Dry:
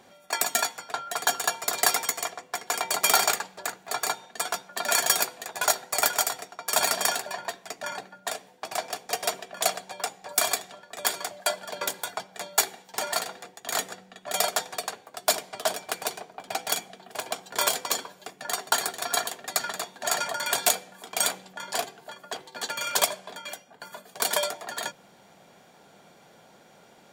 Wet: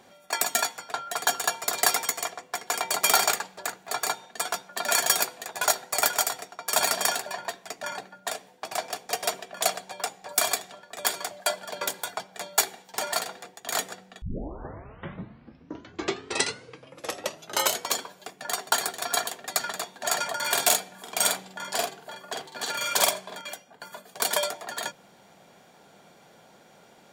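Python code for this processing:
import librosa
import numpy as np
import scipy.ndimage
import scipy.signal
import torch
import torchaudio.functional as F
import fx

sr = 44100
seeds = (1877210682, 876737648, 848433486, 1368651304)

y = fx.doubler(x, sr, ms=47.0, db=-3, at=(20.36, 23.41))
y = fx.edit(y, sr, fx.tape_start(start_s=14.22, length_s=3.73), tone=tone)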